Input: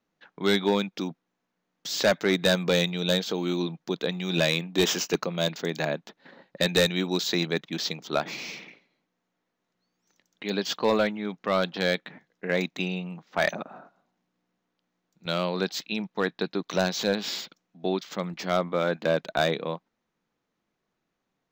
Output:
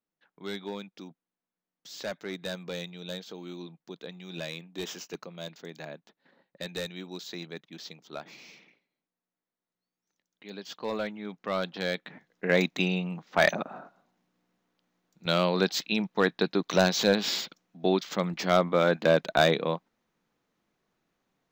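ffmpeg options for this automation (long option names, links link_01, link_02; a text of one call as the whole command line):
ffmpeg -i in.wav -af "volume=2.5dB,afade=type=in:start_time=10.63:duration=0.75:silence=0.398107,afade=type=in:start_time=11.93:duration=0.52:silence=0.398107" out.wav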